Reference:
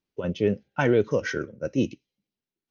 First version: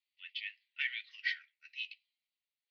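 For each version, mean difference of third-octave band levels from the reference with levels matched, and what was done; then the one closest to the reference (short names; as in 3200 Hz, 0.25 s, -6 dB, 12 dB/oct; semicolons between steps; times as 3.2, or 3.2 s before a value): 18.0 dB: Chebyshev band-pass 1900–4600 Hz, order 4; gain +2 dB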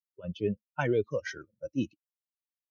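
6.5 dB: per-bin expansion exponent 2; gain -4 dB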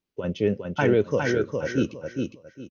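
4.0 dB: feedback echo 0.409 s, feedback 24%, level -4.5 dB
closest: third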